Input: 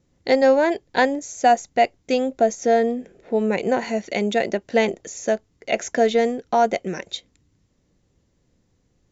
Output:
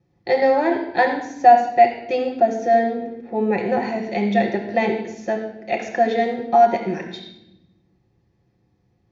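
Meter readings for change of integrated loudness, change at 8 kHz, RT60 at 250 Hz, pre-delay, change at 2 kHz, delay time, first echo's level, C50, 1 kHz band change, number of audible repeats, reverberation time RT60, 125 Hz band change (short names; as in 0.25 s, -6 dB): +1.5 dB, n/a, 1.6 s, 7 ms, +0.5 dB, none, none, 6.5 dB, +5.0 dB, none, 0.90 s, +3.5 dB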